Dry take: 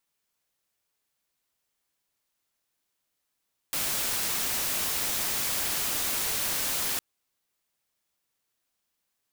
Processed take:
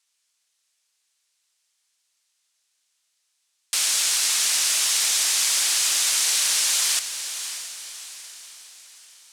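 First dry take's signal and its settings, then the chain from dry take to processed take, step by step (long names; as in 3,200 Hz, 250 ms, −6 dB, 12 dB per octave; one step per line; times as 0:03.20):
noise white, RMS −29 dBFS 3.26 s
meter weighting curve ITU-R 468
on a send: feedback delay with all-pass diffusion 607 ms, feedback 46%, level −10 dB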